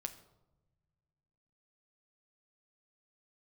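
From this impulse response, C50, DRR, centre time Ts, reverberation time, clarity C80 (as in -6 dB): 13.5 dB, 7.0 dB, 8 ms, not exponential, 15.5 dB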